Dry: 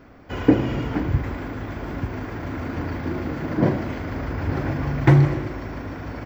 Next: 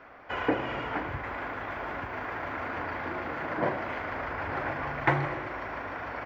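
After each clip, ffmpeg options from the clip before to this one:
ffmpeg -i in.wav -filter_complex "[0:a]asplit=2[link_01][link_02];[link_02]acompressor=threshold=-29dB:ratio=6,volume=-3dB[link_03];[link_01][link_03]amix=inputs=2:normalize=0,acrossover=split=560 3000:gain=0.112 1 0.141[link_04][link_05][link_06];[link_04][link_05][link_06]amix=inputs=3:normalize=0" out.wav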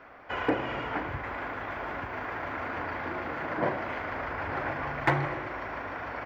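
ffmpeg -i in.wav -af "aeval=exprs='clip(val(0),-1,0.158)':channel_layout=same" out.wav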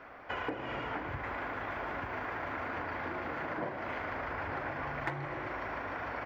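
ffmpeg -i in.wav -af "acompressor=threshold=-34dB:ratio=6" out.wav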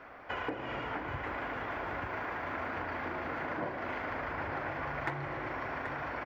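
ffmpeg -i in.wav -af "aecho=1:1:782:0.355" out.wav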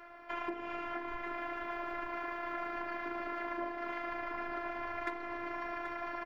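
ffmpeg -i in.wav -af "afftfilt=real='hypot(re,im)*cos(PI*b)':imag='0':win_size=512:overlap=0.75,volume=1dB" out.wav

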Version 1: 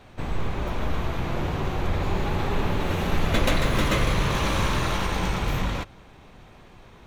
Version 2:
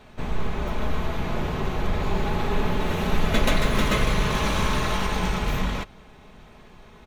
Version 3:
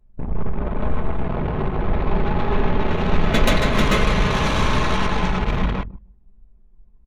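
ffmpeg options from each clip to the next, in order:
ffmpeg -i in.wav -af "aecho=1:1:4.7:0.38" out.wav
ffmpeg -i in.wav -filter_complex "[0:a]asplit=2[link_01][link_02];[link_02]adelay=154,lowpass=frequency=2900:poles=1,volume=-8dB,asplit=2[link_03][link_04];[link_04]adelay=154,lowpass=frequency=2900:poles=1,volume=0.34,asplit=2[link_05][link_06];[link_06]adelay=154,lowpass=frequency=2900:poles=1,volume=0.34,asplit=2[link_07][link_08];[link_08]adelay=154,lowpass=frequency=2900:poles=1,volume=0.34[link_09];[link_01][link_03][link_05][link_07][link_09]amix=inputs=5:normalize=0,anlmdn=100,volume=4dB" out.wav

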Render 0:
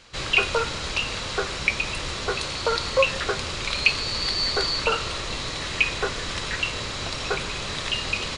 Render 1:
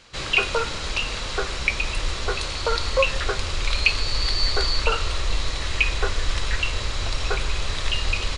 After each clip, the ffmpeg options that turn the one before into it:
ffmpeg -i in.wav -af "asubboost=boost=8:cutoff=59" out.wav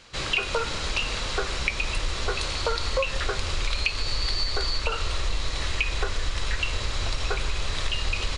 ffmpeg -i in.wav -af "acompressor=threshold=-21dB:ratio=6" out.wav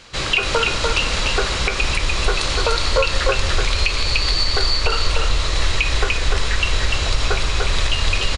ffmpeg -i in.wav -af "aecho=1:1:295:0.668,alimiter=level_in=10.5dB:limit=-1dB:release=50:level=0:latency=1,volume=-3.5dB" out.wav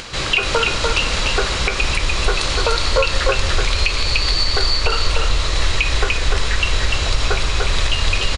ffmpeg -i in.wav -af "acompressor=mode=upward:threshold=-25dB:ratio=2.5,volume=1dB" out.wav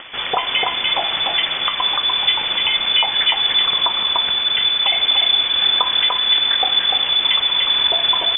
ffmpeg -i in.wav -filter_complex "[0:a]acrossover=split=1900[link_01][link_02];[link_02]aeval=exprs='sgn(val(0))*max(abs(val(0))-0.00668,0)':channel_layout=same[link_03];[link_01][link_03]amix=inputs=2:normalize=0,lowpass=frequency=3000:width_type=q:width=0.5098,lowpass=frequency=3000:width_type=q:width=0.6013,lowpass=frequency=3000:width_type=q:width=0.9,lowpass=frequency=3000:width_type=q:width=2.563,afreqshift=-3500,volume=-1dB" out.wav

